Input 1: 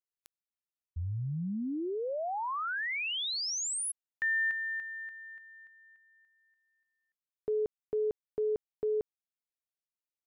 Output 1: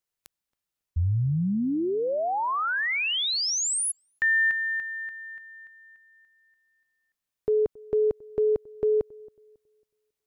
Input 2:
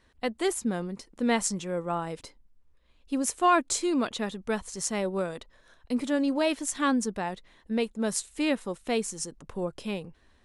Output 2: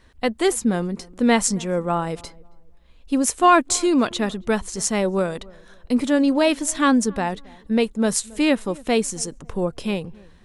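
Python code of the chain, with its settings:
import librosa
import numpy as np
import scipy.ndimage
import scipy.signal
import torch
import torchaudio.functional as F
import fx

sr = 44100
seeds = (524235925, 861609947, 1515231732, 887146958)

p1 = fx.low_shelf(x, sr, hz=120.0, db=5.5)
p2 = p1 + fx.echo_filtered(p1, sr, ms=274, feedback_pct=31, hz=1100.0, wet_db=-23.0, dry=0)
y = F.gain(torch.from_numpy(p2), 7.5).numpy()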